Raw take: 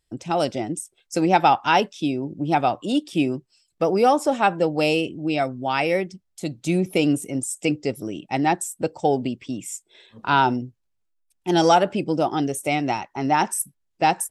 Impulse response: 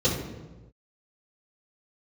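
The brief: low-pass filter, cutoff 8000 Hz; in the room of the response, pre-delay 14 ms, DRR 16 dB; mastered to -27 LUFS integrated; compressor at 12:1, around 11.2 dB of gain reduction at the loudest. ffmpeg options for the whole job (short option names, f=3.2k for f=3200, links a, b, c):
-filter_complex "[0:a]lowpass=8k,acompressor=threshold=-23dB:ratio=12,asplit=2[a][b];[1:a]atrim=start_sample=2205,adelay=14[c];[b][c]afir=irnorm=-1:irlink=0,volume=-30dB[d];[a][d]amix=inputs=2:normalize=0,volume=2dB"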